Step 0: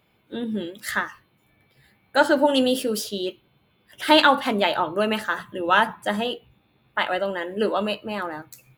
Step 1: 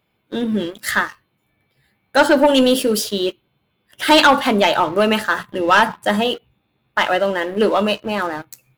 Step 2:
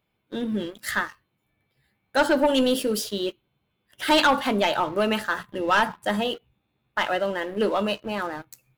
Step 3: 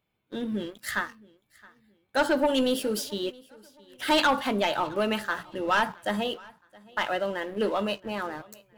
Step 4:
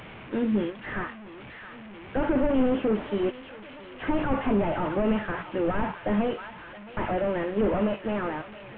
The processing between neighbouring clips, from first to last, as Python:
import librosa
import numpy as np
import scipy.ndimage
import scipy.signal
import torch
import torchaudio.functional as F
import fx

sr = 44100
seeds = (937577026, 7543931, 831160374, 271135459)

y1 = fx.leveller(x, sr, passes=2)
y2 = fx.low_shelf(y1, sr, hz=65.0, db=6.0)
y2 = F.gain(torch.from_numpy(y2), -7.5).numpy()
y3 = fx.echo_feedback(y2, sr, ms=669, feedback_pct=33, wet_db=-24.0)
y3 = F.gain(torch.from_numpy(y3), -3.5).numpy()
y4 = fx.delta_mod(y3, sr, bps=16000, step_db=-43.0)
y4 = F.gain(torch.from_numpy(y4), 6.0).numpy()